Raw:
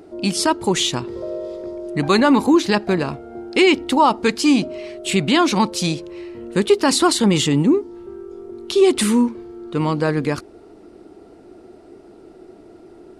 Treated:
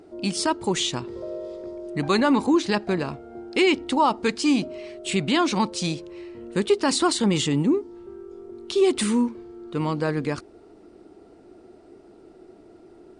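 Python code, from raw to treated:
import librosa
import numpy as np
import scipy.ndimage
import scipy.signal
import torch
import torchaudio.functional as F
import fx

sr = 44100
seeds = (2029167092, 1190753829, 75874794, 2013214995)

y = fx.brickwall_lowpass(x, sr, high_hz=10000.0)
y = F.gain(torch.from_numpy(y), -5.5).numpy()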